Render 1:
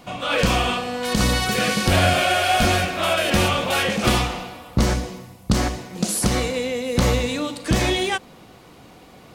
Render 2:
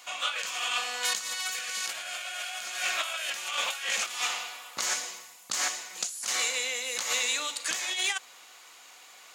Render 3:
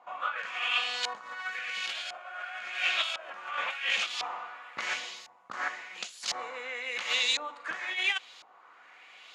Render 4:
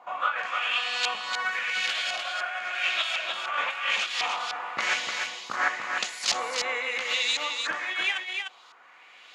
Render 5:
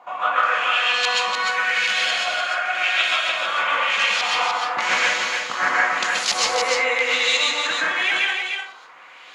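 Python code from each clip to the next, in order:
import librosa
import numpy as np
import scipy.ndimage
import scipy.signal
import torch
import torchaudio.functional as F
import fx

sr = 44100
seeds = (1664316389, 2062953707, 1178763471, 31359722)

y1 = scipy.signal.sosfilt(scipy.signal.butter(2, 1400.0, 'highpass', fs=sr, output='sos'), x)
y1 = fx.peak_eq(y1, sr, hz=6900.0, db=10.0, octaves=0.3)
y1 = fx.over_compress(y1, sr, threshold_db=-28.0, ratio=-0.5)
y1 = y1 * 10.0 ** (-2.5 / 20.0)
y2 = fx.high_shelf(y1, sr, hz=10000.0, db=12.0)
y2 = fx.filter_lfo_lowpass(y2, sr, shape='saw_up', hz=0.95, low_hz=850.0, high_hz=4500.0, q=2.1)
y2 = y2 * 10.0 ** (-3.0 / 20.0)
y3 = fx.rider(y2, sr, range_db=4, speed_s=0.5)
y3 = y3 + 10.0 ** (-5.0 / 20.0) * np.pad(y3, (int(300 * sr / 1000.0), 0))[:len(y3)]
y3 = y3 * 10.0 ** (4.0 / 20.0)
y4 = fx.rev_plate(y3, sr, seeds[0], rt60_s=0.57, hf_ratio=0.5, predelay_ms=115, drr_db=-4.0)
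y4 = y4 * 10.0 ** (3.5 / 20.0)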